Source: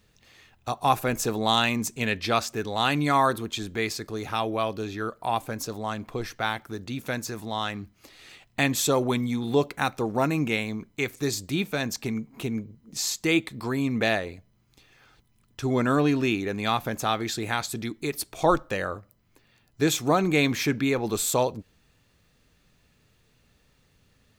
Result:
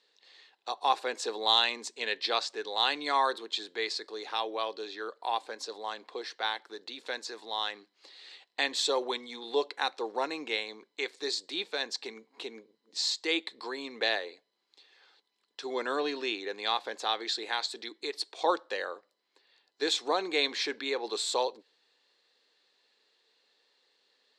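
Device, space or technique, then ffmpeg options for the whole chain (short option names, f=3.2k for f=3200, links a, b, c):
phone speaker on a table: -af "highpass=f=430:w=0.5412,highpass=f=430:w=1.3066,equalizer=f=640:t=q:w=4:g=-8,equalizer=f=1.3k:t=q:w=4:g=-8,equalizer=f=2.4k:t=q:w=4:g=-6,equalizer=f=4.1k:t=q:w=4:g=8,equalizer=f=6.3k:t=q:w=4:g=-8,lowpass=f=6.9k:w=0.5412,lowpass=f=6.9k:w=1.3066,volume=-1.5dB"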